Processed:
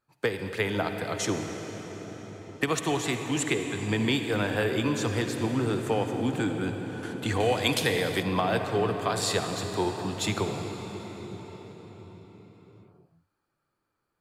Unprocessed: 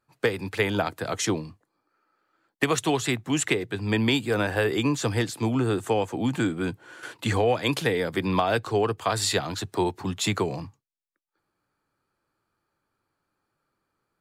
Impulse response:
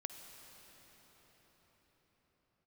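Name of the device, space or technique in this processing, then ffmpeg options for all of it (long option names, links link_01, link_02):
cathedral: -filter_complex "[1:a]atrim=start_sample=2205[link_01];[0:a][link_01]afir=irnorm=-1:irlink=0,asettb=1/sr,asplit=3[link_02][link_03][link_04];[link_02]atrim=end=7.404[link_05];[link_03]atrim=start=7.4:end=8.23,asetpts=PTS-STARTPTS,afade=type=in:duration=0.004:curve=qsin,afade=type=out:start_time=0.826:duration=0.004:curve=qsin,highshelf=frequency=2700:gain=9.5[link_06];[link_04]atrim=start=8.226[link_07];[link_05][link_06]acrossfade=duration=0.004:curve1=hsin:curve2=qsin[link_08];[link_08][link_07]acrossfade=duration=0.004:curve1=qsin:curve2=hsin"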